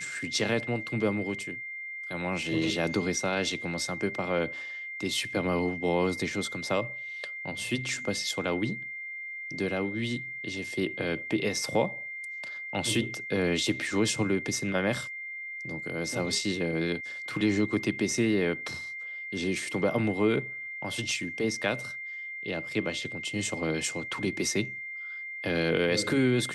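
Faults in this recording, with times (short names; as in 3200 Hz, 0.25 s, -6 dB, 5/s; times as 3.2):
tone 2100 Hz -36 dBFS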